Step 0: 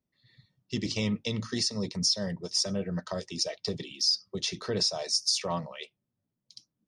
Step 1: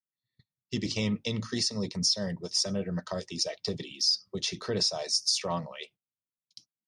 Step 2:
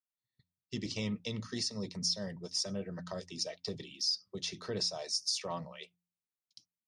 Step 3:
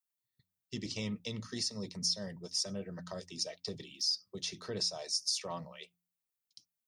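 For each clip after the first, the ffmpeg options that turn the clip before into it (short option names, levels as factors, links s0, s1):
-af "agate=range=0.0562:threshold=0.002:ratio=16:detection=peak"
-af "bandreject=f=87.83:t=h:w=4,bandreject=f=175.66:t=h:w=4,bandreject=f=263.49:t=h:w=4,volume=0.473"
-af "highshelf=f=9400:g=10.5,volume=0.794"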